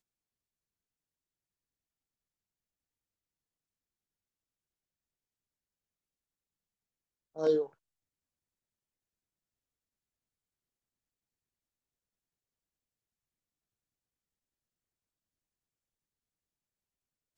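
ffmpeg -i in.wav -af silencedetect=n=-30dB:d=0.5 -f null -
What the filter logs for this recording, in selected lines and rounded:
silence_start: 0.00
silence_end: 7.39 | silence_duration: 7.39
silence_start: 7.62
silence_end: 17.38 | silence_duration: 9.76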